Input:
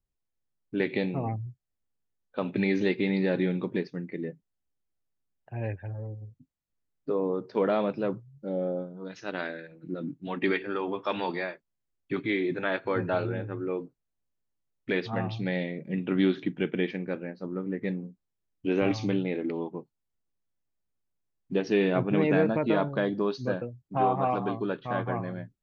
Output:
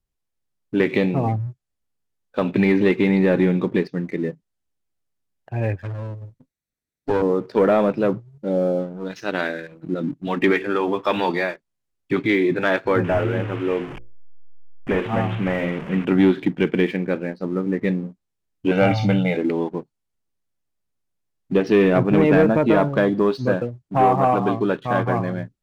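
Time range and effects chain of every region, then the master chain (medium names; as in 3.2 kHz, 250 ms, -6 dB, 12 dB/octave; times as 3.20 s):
5.81–7.22 s: comb filter that takes the minimum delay 0.5 ms + bass shelf 140 Hz -4.5 dB
13.04–16.05 s: one-bit delta coder 16 kbps, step -37 dBFS + hum notches 60/120/180/240/300/360/420/480/540 Hz
18.71–19.37 s: high-pass 47 Hz 6 dB/octave + band-stop 260 Hz, Q 6.7 + comb 1.4 ms, depth 97%
whole clip: low-pass that closes with the level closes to 2.6 kHz, closed at -22.5 dBFS; waveshaping leveller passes 1; trim +6 dB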